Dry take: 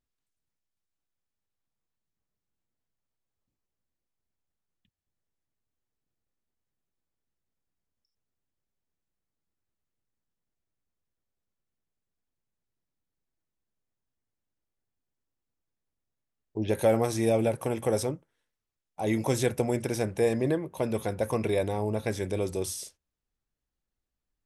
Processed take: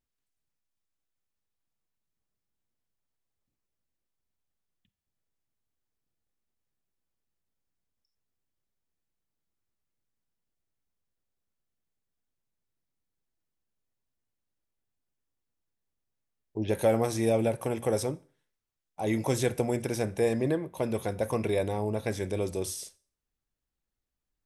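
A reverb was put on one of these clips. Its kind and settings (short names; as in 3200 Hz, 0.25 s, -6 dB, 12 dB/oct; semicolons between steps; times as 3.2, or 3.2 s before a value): Schroeder reverb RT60 0.41 s, combs from 31 ms, DRR 19.5 dB; gain -1 dB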